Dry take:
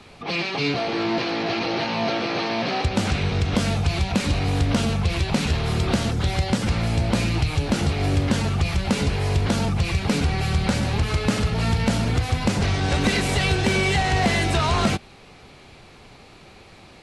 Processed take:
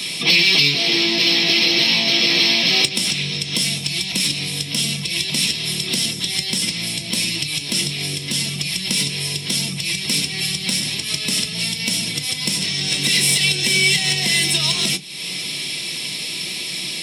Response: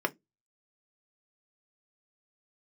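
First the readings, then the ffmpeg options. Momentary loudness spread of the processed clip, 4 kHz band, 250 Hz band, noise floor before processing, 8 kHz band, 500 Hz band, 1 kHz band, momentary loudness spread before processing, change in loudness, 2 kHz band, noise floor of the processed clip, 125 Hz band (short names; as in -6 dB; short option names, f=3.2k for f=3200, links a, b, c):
10 LU, +13.5 dB, -4.0 dB, -47 dBFS, +13.5 dB, -5.5 dB, -10.0 dB, 4 LU, +5.0 dB, +6.5 dB, -28 dBFS, -7.5 dB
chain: -filter_complex "[0:a]highpass=68,bass=f=250:g=14,treble=f=4k:g=13,bandreject=f=6.1k:w=12,acompressor=threshold=-27dB:ratio=6,aexciter=amount=7.5:drive=9.8:freq=2.2k[a];[1:a]atrim=start_sample=2205[b];[a][b]afir=irnorm=-1:irlink=0,volume=-5dB"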